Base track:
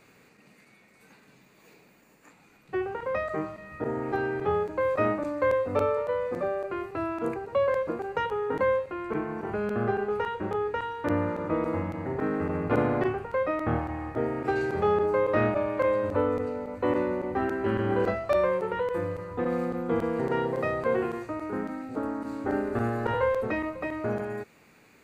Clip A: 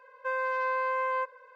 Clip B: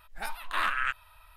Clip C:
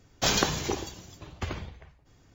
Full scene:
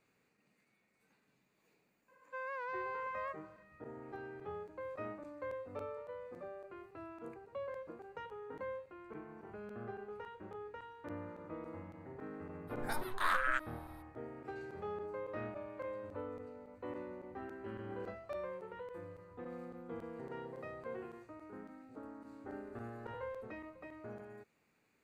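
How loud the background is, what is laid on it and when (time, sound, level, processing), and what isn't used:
base track −18.5 dB
0:02.08: mix in A −12 dB + wow of a warped record 78 rpm, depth 100 cents
0:12.67: mix in B −3 dB, fades 0.02 s + parametric band 2,700 Hz −14 dB 0.4 octaves
not used: C

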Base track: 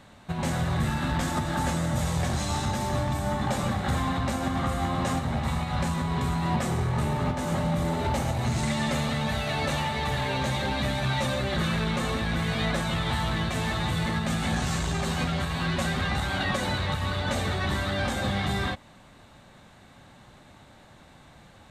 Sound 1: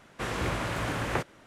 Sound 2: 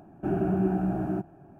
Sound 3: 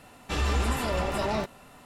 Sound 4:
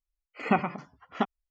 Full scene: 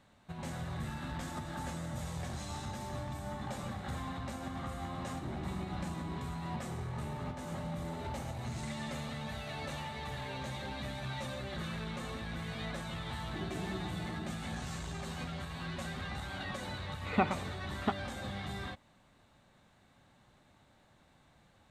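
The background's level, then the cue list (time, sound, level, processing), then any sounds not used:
base track −13 dB
0:04.97: mix in 2 −16 dB + linear delta modulator 16 kbit/s, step −43 dBFS
0:13.10: mix in 2 −15 dB + Bessel high-pass filter 160 Hz
0:16.67: mix in 4 −5 dB
not used: 1, 3

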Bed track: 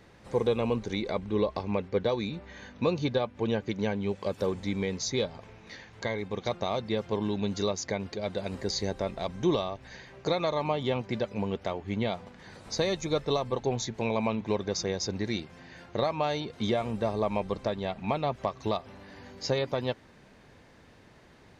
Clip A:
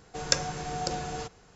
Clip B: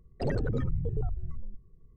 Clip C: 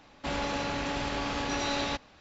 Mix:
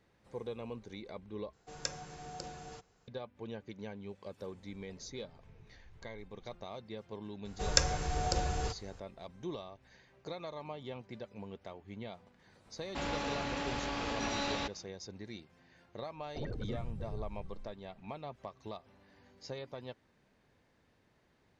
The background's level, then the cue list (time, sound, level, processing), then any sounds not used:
bed track −15 dB
0:01.53: overwrite with A −13 dB
0:04.69: mix in B −16 dB + compressor whose output falls as the input rises −41 dBFS
0:07.45: mix in A −2 dB + low shelf with overshoot 110 Hz +10.5 dB, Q 1.5
0:12.71: mix in C −5 dB, fades 0.10 s
0:16.15: mix in B −11 dB + downsampling to 16,000 Hz

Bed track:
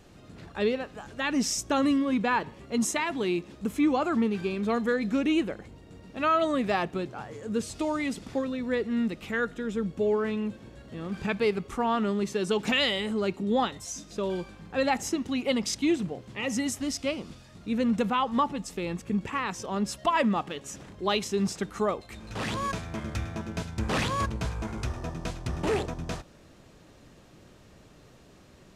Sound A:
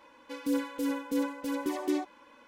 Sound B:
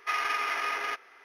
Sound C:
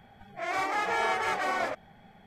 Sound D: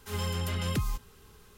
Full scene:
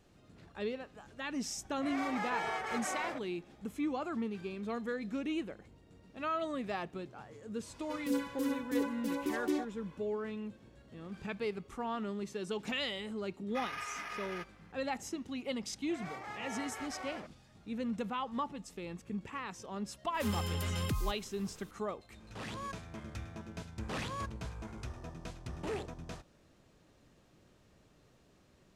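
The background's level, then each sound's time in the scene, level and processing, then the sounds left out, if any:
bed track −11 dB
0:01.44: mix in C −9 dB
0:07.60: mix in A −3.5 dB, fades 0.10 s
0:13.48: mix in B −12 dB + Butterworth high-pass 180 Hz
0:15.52: mix in C −15.5 dB
0:20.14: mix in D −1.5 dB + brickwall limiter −25.5 dBFS

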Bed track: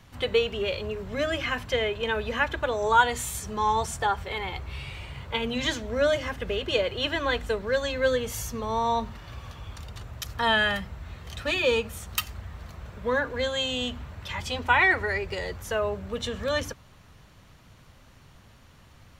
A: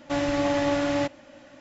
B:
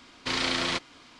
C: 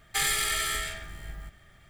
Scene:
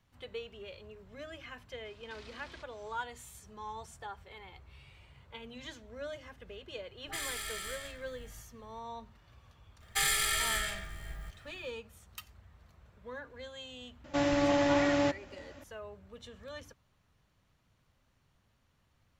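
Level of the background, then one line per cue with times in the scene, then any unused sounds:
bed track −18.5 dB
0:01.85: mix in B −12 dB + downward compressor 4 to 1, threshold −42 dBFS
0:06.91: mix in C −12 dB + all-pass dispersion highs, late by 74 ms, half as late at 800 Hz
0:09.81: mix in C −2.5 dB + parametric band 260 Hz −4.5 dB
0:14.04: mix in A −3 dB

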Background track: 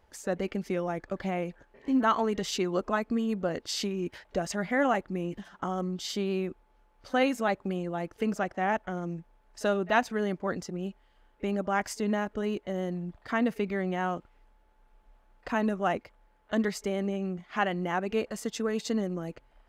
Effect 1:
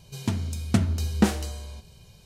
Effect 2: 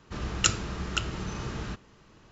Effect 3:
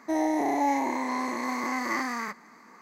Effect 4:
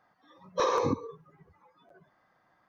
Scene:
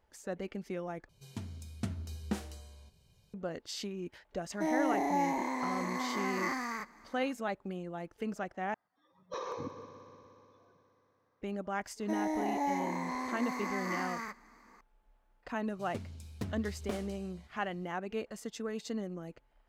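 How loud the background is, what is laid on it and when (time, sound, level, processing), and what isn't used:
background track −8 dB
0:01.09: overwrite with 1 −15 dB
0:04.52: mix in 3 −5.5 dB
0:08.74: overwrite with 4 −13 dB + echo machine with several playback heads 60 ms, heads second and third, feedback 73%, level −14 dB
0:12.00: mix in 3 −7.5 dB
0:15.67: mix in 1 −16.5 dB + highs frequency-modulated by the lows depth 0.96 ms
not used: 2

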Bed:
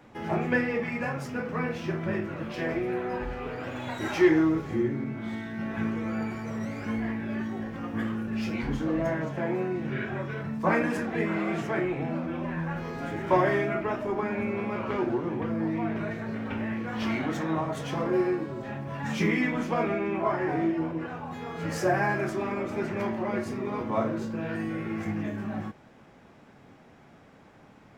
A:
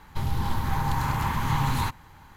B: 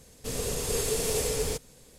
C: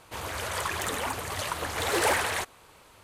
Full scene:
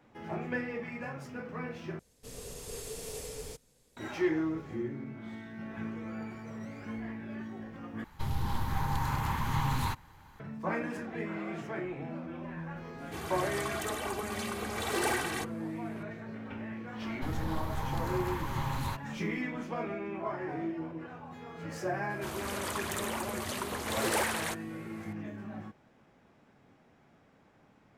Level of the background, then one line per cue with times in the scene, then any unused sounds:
bed −9 dB
0:01.99: overwrite with B −13 dB
0:08.04: overwrite with A −5.5 dB
0:13.00: mix in C −9 dB + comb filter 2.6 ms, depth 86%
0:17.06: mix in A −9 dB
0:22.10: mix in C −6 dB + high-shelf EQ 8,300 Hz +4 dB

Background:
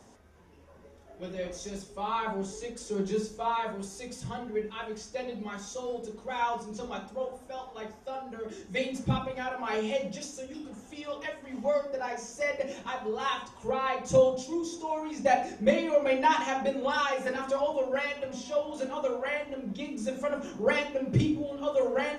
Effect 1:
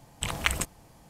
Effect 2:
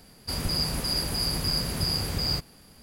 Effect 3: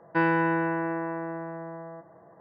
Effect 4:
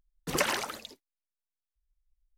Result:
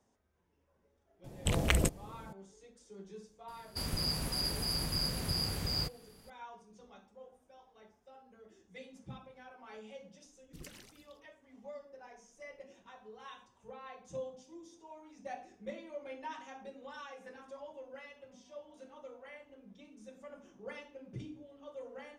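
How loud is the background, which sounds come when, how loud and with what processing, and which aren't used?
background −19.5 dB
0:01.24: mix in 1 −4 dB + low shelf with overshoot 710 Hz +9 dB, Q 1.5
0:03.48: mix in 2 −7 dB
0:10.26: mix in 4 −0.5 dB + guitar amp tone stack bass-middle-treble 10-0-1
not used: 3

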